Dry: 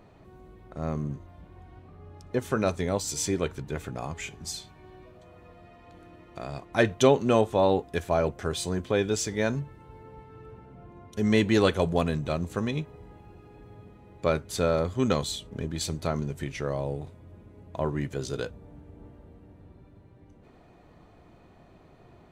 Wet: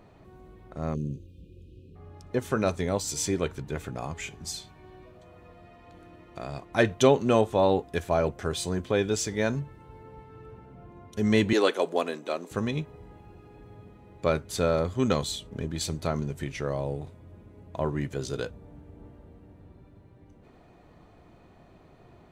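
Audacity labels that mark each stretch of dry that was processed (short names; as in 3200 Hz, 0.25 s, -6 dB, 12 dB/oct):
0.950000	1.960000	spectral delete 560–2400 Hz
11.530000	12.510000	HPF 290 Hz 24 dB/oct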